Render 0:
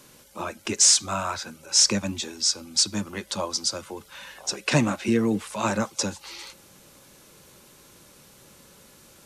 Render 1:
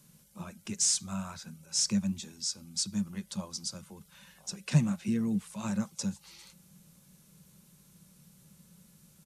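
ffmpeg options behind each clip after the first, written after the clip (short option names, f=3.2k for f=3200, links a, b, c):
-af "firequalizer=gain_entry='entry(120,0);entry(170,13);entry(280,-10);entry(9600,0)':delay=0.05:min_phase=1,volume=-7dB"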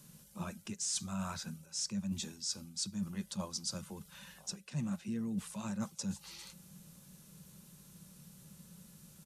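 -af "bandreject=f=2.2k:w=19,areverse,acompressor=threshold=-37dB:ratio=10,areverse,volume=2.5dB"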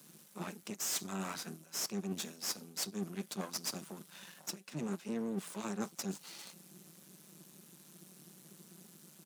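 -af "aeval=exprs='max(val(0),0)':c=same,highpass=f=170:w=0.5412,highpass=f=170:w=1.3066,volume=5dB"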